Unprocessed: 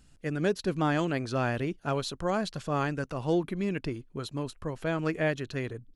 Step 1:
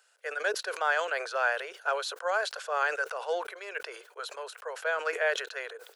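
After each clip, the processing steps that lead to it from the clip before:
Butterworth high-pass 450 Hz 72 dB per octave
parametric band 1,500 Hz +10.5 dB 0.3 octaves
level that may fall only so fast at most 83 dB per second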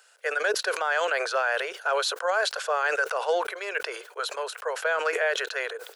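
brickwall limiter −24 dBFS, peak gain reduction 9 dB
level +8 dB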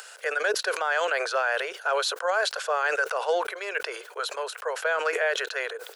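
upward compression, threshold −33 dBFS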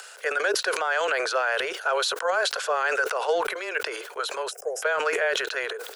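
frequency shifter −14 Hz
gain on a spectral selection 0:04.51–0:04.82, 810–4,900 Hz −25 dB
transient designer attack +2 dB, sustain +7 dB

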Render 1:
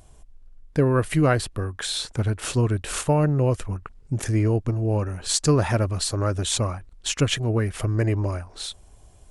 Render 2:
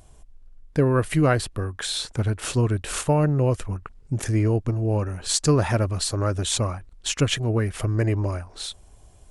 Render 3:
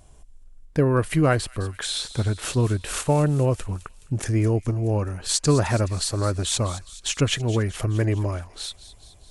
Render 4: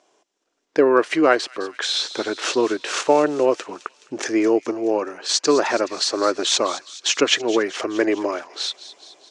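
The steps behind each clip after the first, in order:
no processing that can be heard
tape wow and flutter 26 cents; delay with a high-pass on its return 211 ms, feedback 61%, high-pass 3,000 Hz, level −13 dB
elliptic band-pass filter 330–6,100 Hz, stop band 60 dB; automatic gain control gain up to 9 dB

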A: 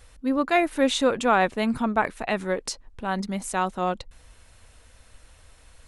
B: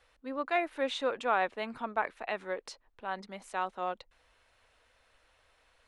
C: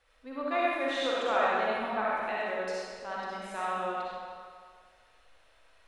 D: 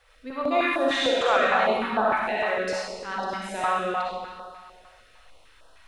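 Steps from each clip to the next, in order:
three-way crossover with the lows and the highs turned down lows −15 dB, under 370 Hz, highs −14 dB, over 4,400 Hz; level −7.5 dB
convolution reverb RT60 1.9 s, pre-delay 20 ms, DRR −7 dB; level −4.5 dB
notch on a step sequencer 6.6 Hz 260–2,200 Hz; level +9 dB

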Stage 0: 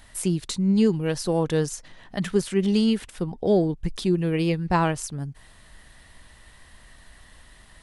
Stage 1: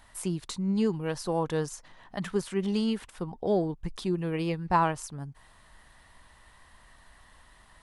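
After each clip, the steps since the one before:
parametric band 1,000 Hz +8.5 dB 1.1 octaves
level −7.5 dB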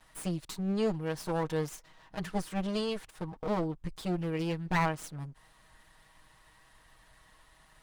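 lower of the sound and its delayed copy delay 6.3 ms
level −2.5 dB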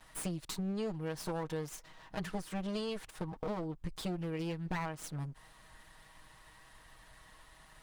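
downward compressor 6 to 1, threshold −37 dBFS, peak gain reduction 13 dB
level +2.5 dB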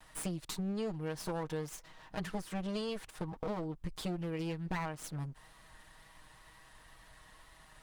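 tape wow and flutter 26 cents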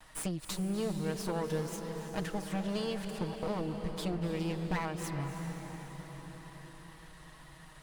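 convolution reverb RT60 5.6 s, pre-delay 233 ms, DRR 5 dB
level +2 dB

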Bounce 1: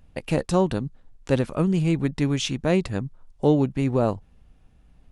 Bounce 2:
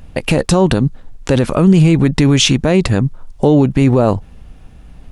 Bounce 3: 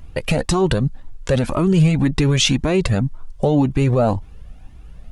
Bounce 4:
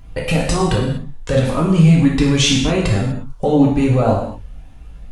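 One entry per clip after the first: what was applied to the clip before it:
boost into a limiter +18 dB; level −1 dB
flanger whose copies keep moving one way rising 1.9 Hz
convolution reverb, pre-delay 3 ms, DRR −3 dB; level −2.5 dB

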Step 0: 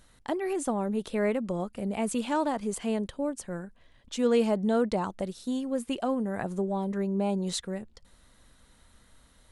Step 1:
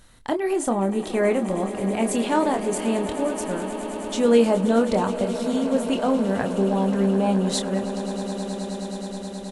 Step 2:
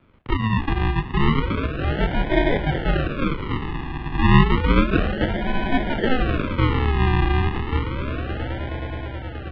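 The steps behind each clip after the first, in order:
double-tracking delay 26 ms −7 dB; echo that builds up and dies away 106 ms, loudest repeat 8, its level −16.5 dB; level +5.5 dB
sample-and-hold swept by an LFO 41×, swing 60% 0.31 Hz; high-pass filter 120 Hz 24 dB per octave; single-sideband voice off tune −270 Hz 170–3,500 Hz; level +3 dB

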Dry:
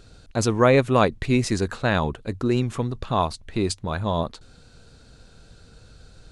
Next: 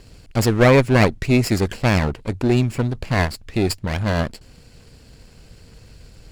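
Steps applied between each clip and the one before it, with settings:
lower of the sound and its delayed copy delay 0.41 ms
level +4.5 dB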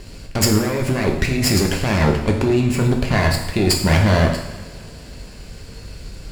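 compressor whose output falls as the input rises −21 dBFS, ratio −1
coupled-rooms reverb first 0.79 s, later 2.9 s, from −18 dB, DRR 0.5 dB
level +3 dB

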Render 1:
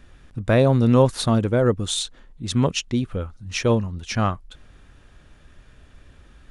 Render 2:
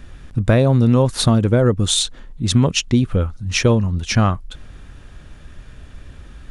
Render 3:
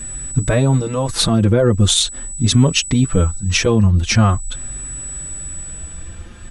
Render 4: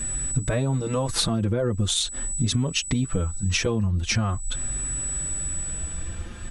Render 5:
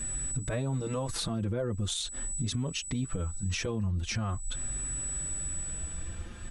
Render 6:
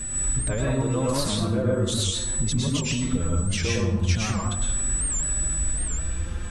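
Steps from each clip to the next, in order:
bass and treble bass +4 dB, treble +1 dB; downward compressor 5 to 1, threshold −17 dBFS, peak gain reduction 8.5 dB; level +7 dB
steady tone 7,900 Hz −35 dBFS; boost into a limiter +9 dB; barber-pole flanger 5 ms +0.42 Hz; level −1 dB
downward compressor 6 to 1, threshold −21 dBFS, peak gain reduction 13 dB
brickwall limiter −17.5 dBFS, peak gain reduction 6 dB; level −6 dB
feedback echo with a low-pass in the loop 99 ms, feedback 80%, low-pass 1,900 Hz, level −16 dB; dense smooth reverb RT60 0.72 s, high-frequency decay 0.7×, pre-delay 95 ms, DRR −3 dB; wow of a warped record 78 rpm, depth 160 cents; level +3.5 dB

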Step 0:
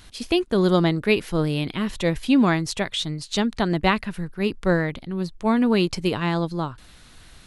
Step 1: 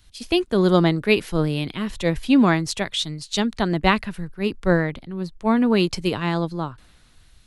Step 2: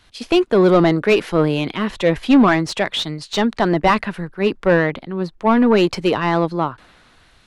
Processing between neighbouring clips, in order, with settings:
multiband upward and downward expander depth 40%; level +1 dB
mid-hump overdrive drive 21 dB, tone 1,100 Hz, clips at −1 dBFS

